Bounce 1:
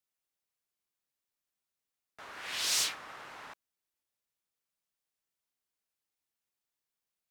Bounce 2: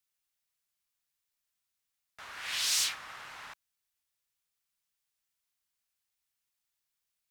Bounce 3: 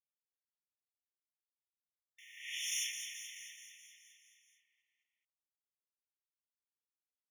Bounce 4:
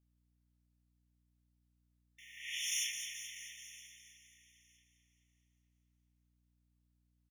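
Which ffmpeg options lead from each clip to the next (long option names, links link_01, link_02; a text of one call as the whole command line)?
ffmpeg -i in.wav -filter_complex "[0:a]equalizer=frequency=370:width_type=o:width=2.5:gain=-11.5,asplit=2[link_01][link_02];[link_02]alimiter=level_in=4.5dB:limit=-24dB:level=0:latency=1,volume=-4.5dB,volume=0dB[link_03];[link_01][link_03]amix=inputs=2:normalize=0,volume=-1.5dB" out.wav
ffmpeg -i in.wav -filter_complex "[0:a]aeval=exprs='val(0)*gte(abs(val(0)),0.00188)':channel_layout=same,asplit=9[link_01][link_02][link_03][link_04][link_05][link_06][link_07][link_08][link_09];[link_02]adelay=214,afreqshift=71,volume=-8dB[link_10];[link_03]adelay=428,afreqshift=142,volume=-12dB[link_11];[link_04]adelay=642,afreqshift=213,volume=-16dB[link_12];[link_05]adelay=856,afreqshift=284,volume=-20dB[link_13];[link_06]adelay=1070,afreqshift=355,volume=-24.1dB[link_14];[link_07]adelay=1284,afreqshift=426,volume=-28.1dB[link_15];[link_08]adelay=1498,afreqshift=497,volume=-32.1dB[link_16];[link_09]adelay=1712,afreqshift=568,volume=-36.1dB[link_17];[link_01][link_10][link_11][link_12][link_13][link_14][link_15][link_16][link_17]amix=inputs=9:normalize=0,afftfilt=real='re*eq(mod(floor(b*sr/1024/1800),2),1)':imag='im*eq(mod(floor(b*sr/1024/1800),2),1)':win_size=1024:overlap=0.75,volume=-5.5dB" out.wav
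ffmpeg -i in.wav -af "aecho=1:1:964|1928:0.0891|0.0178,aeval=exprs='val(0)+0.000158*(sin(2*PI*60*n/s)+sin(2*PI*2*60*n/s)/2+sin(2*PI*3*60*n/s)/3+sin(2*PI*4*60*n/s)/4+sin(2*PI*5*60*n/s)/5)':channel_layout=same,volume=1dB" out.wav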